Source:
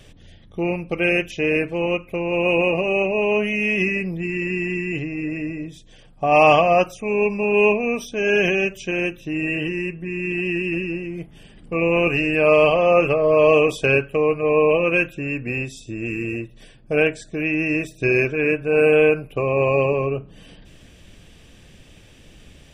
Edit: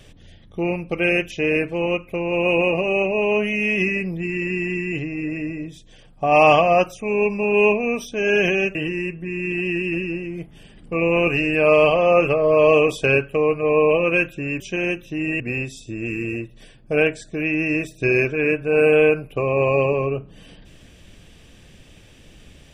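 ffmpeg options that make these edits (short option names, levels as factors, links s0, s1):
-filter_complex "[0:a]asplit=4[s0][s1][s2][s3];[s0]atrim=end=8.752[s4];[s1]atrim=start=9.548:end=15.402[s5];[s2]atrim=start=8.748:end=9.552[s6];[s3]atrim=start=15.398[s7];[s4][s5]acrossfade=d=0.004:c1=hsin:c2=hsin[s8];[s8][s6]acrossfade=d=0.004:c1=hsin:c2=hsin[s9];[s9][s7]acrossfade=d=0.004:c1=hsin:c2=hsin"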